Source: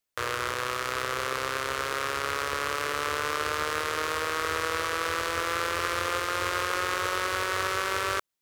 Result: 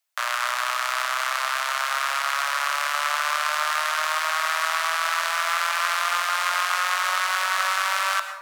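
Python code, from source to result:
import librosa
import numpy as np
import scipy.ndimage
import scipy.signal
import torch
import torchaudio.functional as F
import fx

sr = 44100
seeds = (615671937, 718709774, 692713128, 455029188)

y = scipy.signal.sosfilt(scipy.signal.butter(16, 610.0, 'highpass', fs=sr, output='sos'), x)
y = fx.rev_plate(y, sr, seeds[0], rt60_s=0.86, hf_ratio=0.55, predelay_ms=90, drr_db=8.5)
y = F.gain(torch.from_numpy(y), 5.5).numpy()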